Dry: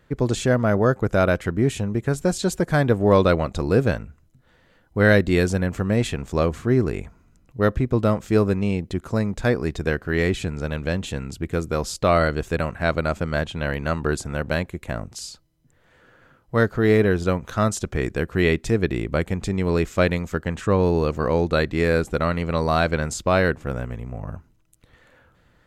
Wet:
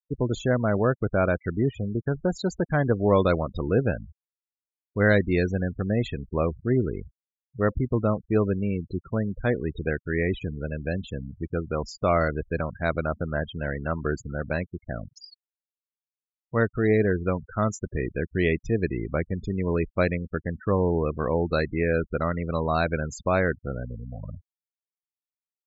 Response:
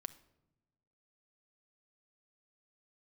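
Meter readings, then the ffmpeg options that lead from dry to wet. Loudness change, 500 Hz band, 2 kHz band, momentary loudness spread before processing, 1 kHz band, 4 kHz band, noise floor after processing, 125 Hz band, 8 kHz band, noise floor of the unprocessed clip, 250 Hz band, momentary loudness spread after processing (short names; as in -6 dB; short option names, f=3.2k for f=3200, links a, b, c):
-4.0 dB, -4.0 dB, -4.5 dB, 9 LU, -4.5 dB, -9.5 dB, under -85 dBFS, -4.0 dB, -12.0 dB, -60 dBFS, -4.0 dB, 9 LU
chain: -af "aresample=16000,aresample=44100,afftfilt=real='re*gte(hypot(re,im),0.0562)':imag='im*gte(hypot(re,im),0.0562)':win_size=1024:overlap=0.75,volume=-4dB"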